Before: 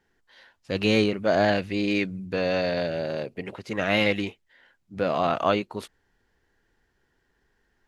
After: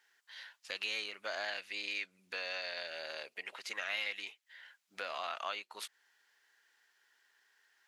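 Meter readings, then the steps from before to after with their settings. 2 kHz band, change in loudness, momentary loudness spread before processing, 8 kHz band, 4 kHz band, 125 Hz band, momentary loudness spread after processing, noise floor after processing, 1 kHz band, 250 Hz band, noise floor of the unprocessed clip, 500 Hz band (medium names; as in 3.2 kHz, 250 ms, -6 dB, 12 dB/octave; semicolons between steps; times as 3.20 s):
-9.0 dB, -14.5 dB, 13 LU, no reading, -7.5 dB, under -40 dB, 15 LU, -79 dBFS, -15.0 dB, -34.5 dB, -72 dBFS, -22.0 dB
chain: Bessel high-pass 1.8 kHz, order 2; compression 2.5:1, threshold -48 dBFS, peak gain reduction 16 dB; trim +6 dB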